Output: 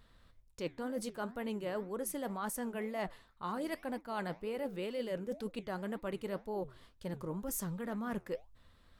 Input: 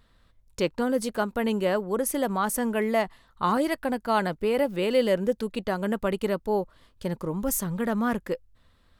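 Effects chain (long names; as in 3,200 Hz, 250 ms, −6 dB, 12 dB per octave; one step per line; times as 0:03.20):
reversed playback
downward compressor 6 to 1, threshold −34 dBFS, peak gain reduction 15.5 dB
reversed playback
flanger 2 Hz, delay 4.4 ms, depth 8.6 ms, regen −82%
level +2.5 dB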